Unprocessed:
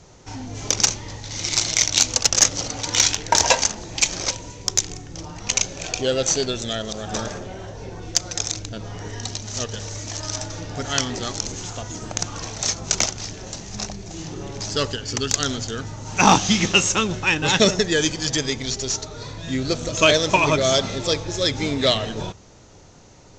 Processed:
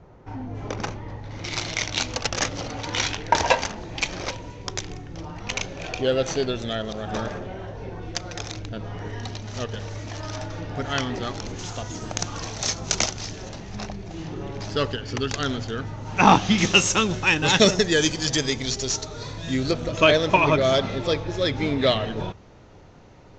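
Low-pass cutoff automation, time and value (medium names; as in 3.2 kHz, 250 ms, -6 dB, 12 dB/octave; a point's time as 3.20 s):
1.5 kHz
from 1.44 s 2.9 kHz
from 11.59 s 5.8 kHz
from 13.49 s 3 kHz
from 16.58 s 7.4 kHz
from 19.71 s 2.9 kHz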